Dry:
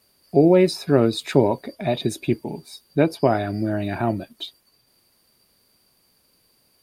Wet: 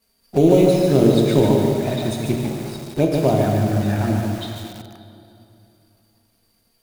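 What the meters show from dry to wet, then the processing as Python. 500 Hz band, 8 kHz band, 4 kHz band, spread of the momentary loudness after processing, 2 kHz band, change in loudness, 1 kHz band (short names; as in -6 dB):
+2.5 dB, +4.5 dB, +1.0 dB, 14 LU, -0.5 dB, +3.0 dB, +0.5 dB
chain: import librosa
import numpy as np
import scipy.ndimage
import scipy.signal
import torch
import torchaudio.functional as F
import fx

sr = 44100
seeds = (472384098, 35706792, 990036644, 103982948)

p1 = fx.quant_companded(x, sr, bits=4)
p2 = x + (p1 * 10.0 ** (-5.0 / 20.0))
p3 = fx.env_flanger(p2, sr, rest_ms=4.4, full_db=-11.0)
p4 = fx.low_shelf(p3, sr, hz=120.0, db=10.0)
p5 = fx.hum_notches(p4, sr, base_hz=60, count=7)
p6 = fx.rev_plate(p5, sr, seeds[0], rt60_s=3.0, hf_ratio=0.75, predelay_ms=0, drr_db=2.0)
p7 = fx.echo_crushed(p6, sr, ms=147, feedback_pct=35, bits=5, wet_db=-4)
y = p7 * 10.0 ** (-4.0 / 20.0)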